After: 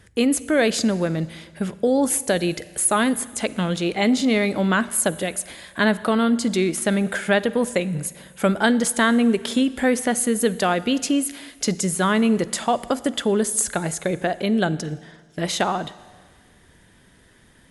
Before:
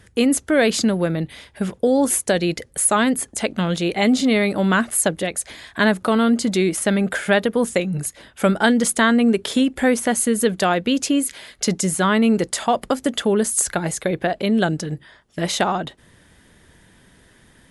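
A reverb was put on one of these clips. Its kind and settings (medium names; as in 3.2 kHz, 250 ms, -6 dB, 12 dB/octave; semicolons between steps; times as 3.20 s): Schroeder reverb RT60 1.6 s, DRR 17 dB; trim -2 dB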